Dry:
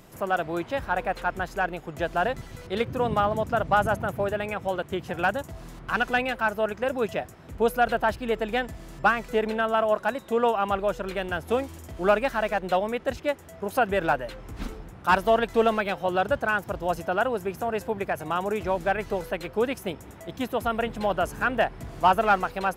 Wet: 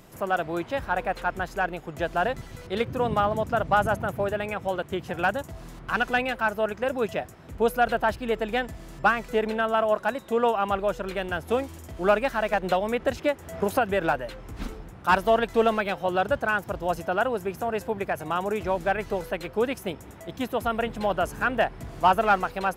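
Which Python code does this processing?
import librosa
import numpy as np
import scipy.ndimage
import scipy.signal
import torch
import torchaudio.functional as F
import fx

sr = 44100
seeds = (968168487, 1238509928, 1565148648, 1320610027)

y = fx.band_squash(x, sr, depth_pct=100, at=(12.53, 14.16))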